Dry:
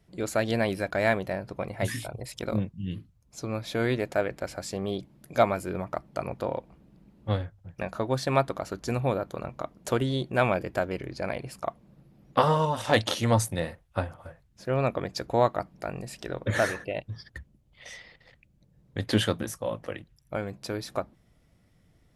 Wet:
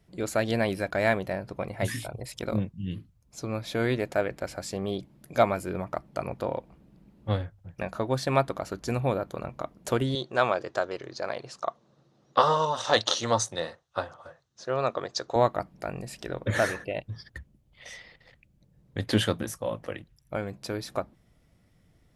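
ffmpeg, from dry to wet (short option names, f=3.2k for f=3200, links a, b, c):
-filter_complex "[0:a]asettb=1/sr,asplit=3[a][b][c];[a]atrim=end=10.154[d];[b]atrim=start=10.15:end=15.36,asetpts=PTS-STARTPTS,afade=t=in:d=0.004:c=qsin,afade=t=out:st=5.206:d=0.004:c=qsin,highpass=190,equalizer=f=190:t=q:w=4:g=-10,equalizer=f=280:t=q:w=4:g=-7,equalizer=f=1.2k:t=q:w=4:g=5,equalizer=f=2.3k:t=q:w=4:g=-7,equalizer=f=3.9k:t=q:w=4:g=7,equalizer=f=6.1k:t=q:w=4:g=8,lowpass=f=7.8k:w=0.5412,lowpass=f=7.8k:w=1.3066[e];[c]atrim=start=15.356[f];[d][e]acrossfade=d=0.004:c1=hsin:c2=qsin[g];[g][f]acrossfade=d=0.004:c1=qsin:c2=hsin"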